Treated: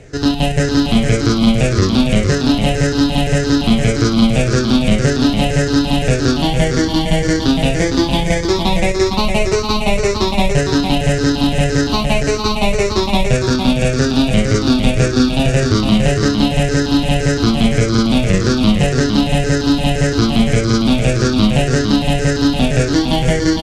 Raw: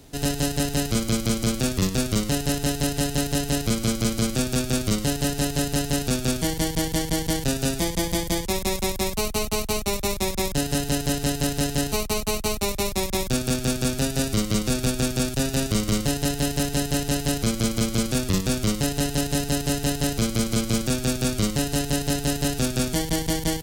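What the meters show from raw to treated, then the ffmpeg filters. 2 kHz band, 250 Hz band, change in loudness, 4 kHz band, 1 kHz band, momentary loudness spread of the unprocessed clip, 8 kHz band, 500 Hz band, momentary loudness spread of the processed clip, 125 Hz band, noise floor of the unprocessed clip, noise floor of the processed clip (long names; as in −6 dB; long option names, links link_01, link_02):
+11.0 dB, +11.5 dB, +9.5 dB, +8.0 dB, +11.0 dB, 2 LU, 0.0 dB, +11.0 dB, 3 LU, +10.5 dB, −32 dBFS, −19 dBFS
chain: -filter_complex "[0:a]afftfilt=real='re*pow(10,14/40*sin(2*PI*(0.51*log(max(b,1)*sr/1024/100)/log(2)-(-1.8)*(pts-256)/sr)))':imag='im*pow(10,14/40*sin(2*PI*(0.51*log(max(b,1)*sr/1024/100)/log(2)-(-1.8)*(pts-256)/sr)))':win_size=1024:overlap=0.75,lowpass=4100,acontrast=53,asplit=2[link_01][link_02];[link_02]aecho=0:1:459:0.531[link_03];[link_01][link_03]amix=inputs=2:normalize=0,volume=2dB"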